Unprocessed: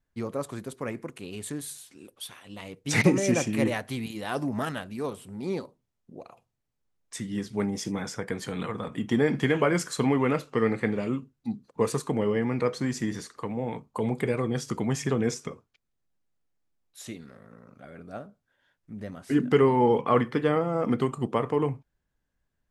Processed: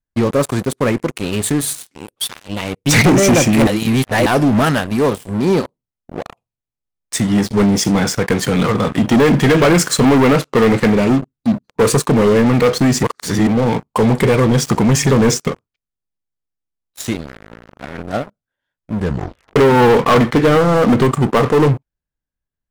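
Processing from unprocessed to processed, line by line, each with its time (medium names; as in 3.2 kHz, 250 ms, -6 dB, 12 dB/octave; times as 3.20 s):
3.67–4.26 s: reverse
13.03–13.47 s: reverse
18.98 s: tape stop 0.58 s
whole clip: bass shelf 130 Hz +4 dB; waveshaping leveller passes 5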